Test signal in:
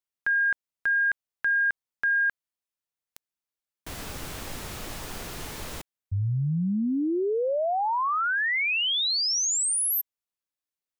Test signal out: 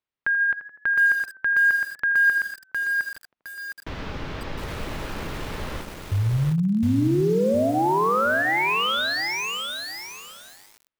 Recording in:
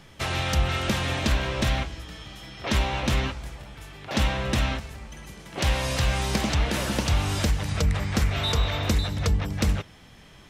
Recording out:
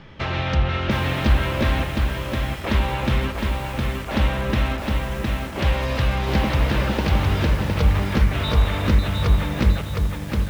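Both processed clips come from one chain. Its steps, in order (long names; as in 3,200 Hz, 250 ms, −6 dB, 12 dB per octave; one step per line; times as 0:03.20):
notch filter 720 Hz, Q 12
in parallel at −3 dB: downward compressor 8 to 1, threshold −35 dBFS
on the sum: high-frequency loss of the air 250 metres
tape delay 83 ms, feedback 66%, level −11 dB, low-pass 1,700 Hz
feedback echo at a low word length 711 ms, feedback 35%, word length 7 bits, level −3 dB
level +2.5 dB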